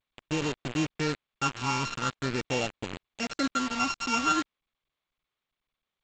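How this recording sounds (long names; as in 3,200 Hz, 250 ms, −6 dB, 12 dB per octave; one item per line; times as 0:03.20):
a buzz of ramps at a fixed pitch in blocks of 32 samples
phaser sweep stages 8, 0.44 Hz, lowest notch 510–1,600 Hz
a quantiser's noise floor 6 bits, dither none
G.722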